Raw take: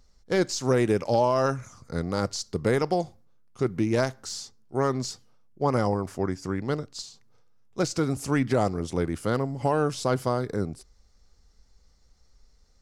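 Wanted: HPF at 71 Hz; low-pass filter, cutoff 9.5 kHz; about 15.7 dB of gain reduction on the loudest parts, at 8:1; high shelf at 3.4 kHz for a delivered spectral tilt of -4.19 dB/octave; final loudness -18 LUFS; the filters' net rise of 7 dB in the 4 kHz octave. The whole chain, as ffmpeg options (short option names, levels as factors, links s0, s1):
-af "highpass=71,lowpass=9500,highshelf=f=3400:g=4.5,equalizer=f=4000:t=o:g=5.5,acompressor=threshold=0.0178:ratio=8,volume=11.9"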